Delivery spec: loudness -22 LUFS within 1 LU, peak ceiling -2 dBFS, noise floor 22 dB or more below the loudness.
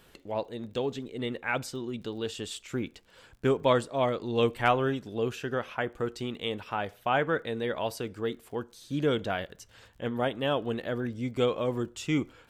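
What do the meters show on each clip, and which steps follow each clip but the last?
tick rate 33 per s; loudness -31.0 LUFS; peak level -10.0 dBFS; loudness target -22.0 LUFS
-> de-click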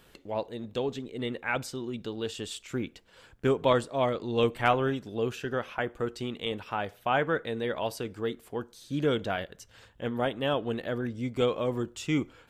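tick rate 0.080 per s; loudness -31.0 LUFS; peak level -10.0 dBFS; loudness target -22.0 LUFS
-> trim +9 dB; peak limiter -2 dBFS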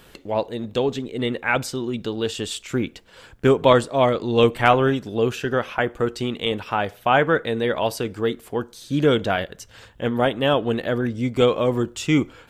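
loudness -22.0 LUFS; peak level -2.0 dBFS; noise floor -50 dBFS

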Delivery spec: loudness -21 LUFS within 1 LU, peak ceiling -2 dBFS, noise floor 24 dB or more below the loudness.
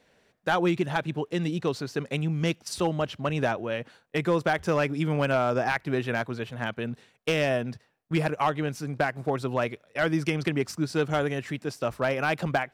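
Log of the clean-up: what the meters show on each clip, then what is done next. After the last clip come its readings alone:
clipped samples 0.3%; clipping level -15.5 dBFS; loudness -28.0 LUFS; peak level -15.5 dBFS; loudness target -21.0 LUFS
-> clip repair -15.5 dBFS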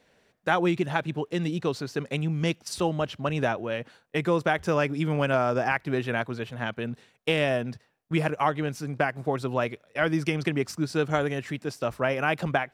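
clipped samples 0.0%; loudness -28.0 LUFS; peak level -8.0 dBFS; loudness target -21.0 LUFS
-> trim +7 dB; peak limiter -2 dBFS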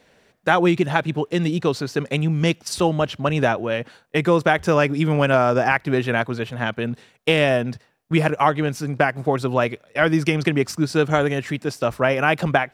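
loudness -21.0 LUFS; peak level -2.0 dBFS; noise floor -59 dBFS

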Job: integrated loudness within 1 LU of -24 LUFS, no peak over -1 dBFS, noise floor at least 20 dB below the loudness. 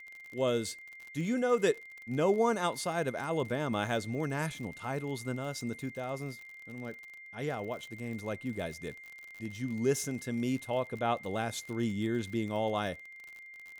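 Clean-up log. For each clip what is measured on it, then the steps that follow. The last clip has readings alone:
tick rate 49 per s; steady tone 2.1 kHz; tone level -47 dBFS; loudness -34.0 LUFS; peak level -16.0 dBFS; loudness target -24.0 LUFS
-> de-click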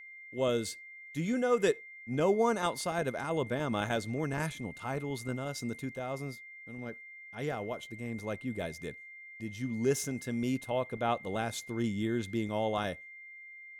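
tick rate 0.072 per s; steady tone 2.1 kHz; tone level -47 dBFS
-> band-stop 2.1 kHz, Q 30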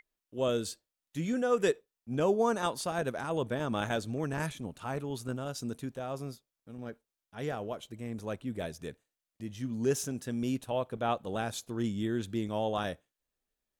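steady tone not found; loudness -34.0 LUFS; peak level -16.0 dBFS; loudness target -24.0 LUFS
-> trim +10 dB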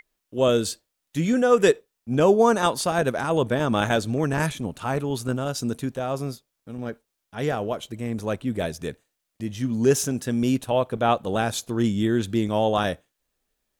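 loudness -24.0 LUFS; peak level -6.0 dBFS; noise floor -80 dBFS

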